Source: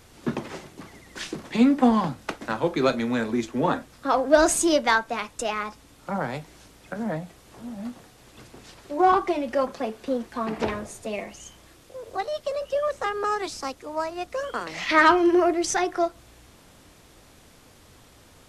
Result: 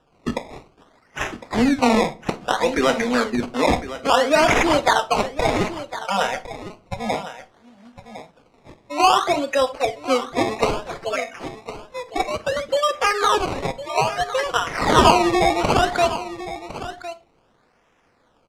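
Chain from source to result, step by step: frequency weighting A; spectral noise reduction 16 dB; comb 4.2 ms, depth 43%; in parallel at -2 dB: compressor with a negative ratio -25 dBFS, ratio -0.5; on the sum: decimation with a swept rate 20×, swing 100% 0.6 Hz; distance through air 68 m; delay 1057 ms -13.5 dB; on a send at -16 dB: reverberation RT60 0.35 s, pre-delay 34 ms; on the sum: trim +3 dB

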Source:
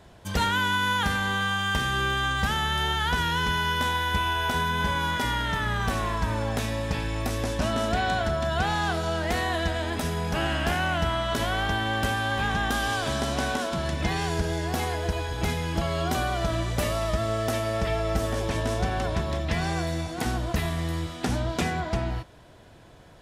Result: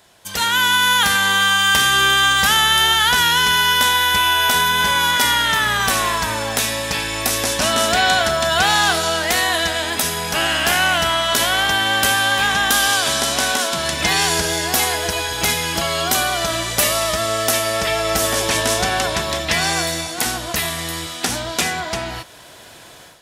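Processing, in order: tilt EQ +3.5 dB/octave; level rider gain up to 11.5 dB

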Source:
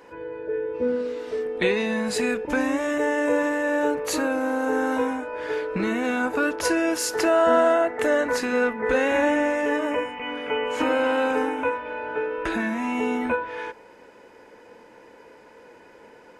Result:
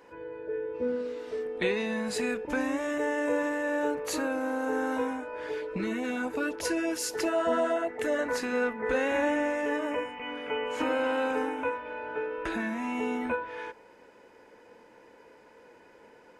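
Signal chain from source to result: 5.49–8.19 s: LFO notch sine 8.1 Hz 650–1600 Hz; trim -6 dB

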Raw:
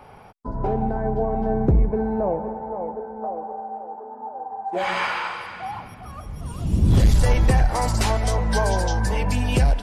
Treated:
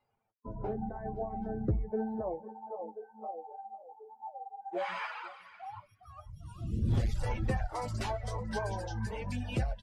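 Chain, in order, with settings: reverb removal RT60 1.2 s; low-pass 3.4 kHz 6 dB/octave; spectral noise reduction 22 dB; flange 0.43 Hz, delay 8.5 ms, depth 1.9 ms, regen +36%; delay 502 ms -21 dB; trim -7 dB

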